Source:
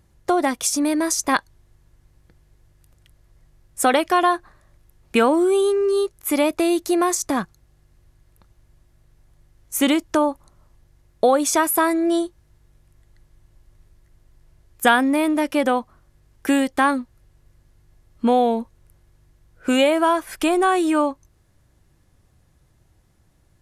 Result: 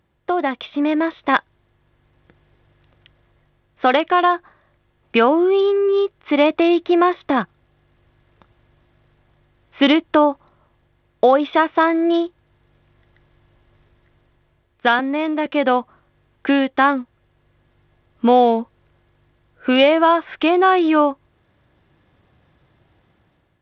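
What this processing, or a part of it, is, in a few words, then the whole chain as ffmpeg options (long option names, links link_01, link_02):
Bluetooth headset: -filter_complex "[0:a]asettb=1/sr,asplit=3[link_01][link_02][link_03];[link_01]atrim=end=14.994[link_04];[link_02]atrim=start=14.99:end=15.46,asetpts=PTS-STARTPTS,afade=type=in:duration=0.004:curve=qsin,afade=type=out:start_time=0.466:duration=0.004:curve=qsin,highpass=frequency=240:width=0.5412,highpass=frequency=240:width=1.3066[link_05];[link_03]atrim=start=15.456[link_06];[link_04][link_05]acrossfade=duration=0.004:curve1=hsin:curve2=qsin[link_07];[link_07][link_06]acrossfade=duration=0.004:curve1=qsin:curve2=hsin,highpass=frequency=220:poles=1,dynaudnorm=framelen=250:gausssize=5:maxgain=9dB,aresample=8000,aresample=44100,volume=-1dB" -ar 32000 -c:a sbc -b:a 64k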